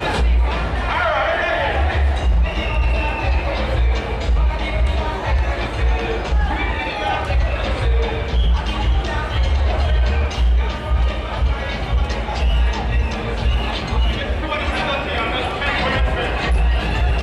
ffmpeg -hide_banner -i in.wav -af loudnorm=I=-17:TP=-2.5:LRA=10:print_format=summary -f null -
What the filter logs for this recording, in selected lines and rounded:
Input Integrated:    -20.0 LUFS
Input True Peak:      -6.9 dBTP
Input LRA:             1.8 LU
Input Threshold:     -30.0 LUFS